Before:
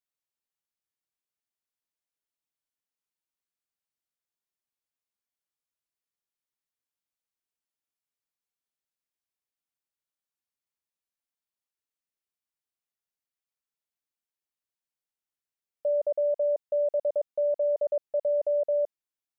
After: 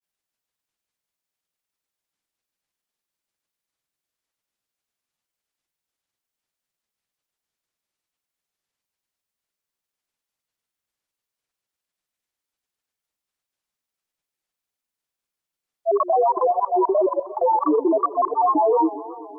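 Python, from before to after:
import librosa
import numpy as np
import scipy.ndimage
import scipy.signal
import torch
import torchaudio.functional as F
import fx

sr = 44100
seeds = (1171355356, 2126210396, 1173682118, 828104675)

y = fx.granulator(x, sr, seeds[0], grain_ms=100.0, per_s=20.0, spray_ms=100.0, spread_st=12)
y = fx.echo_warbled(y, sr, ms=125, feedback_pct=75, rate_hz=2.8, cents=196, wet_db=-17)
y = y * librosa.db_to_amplitude(8.5)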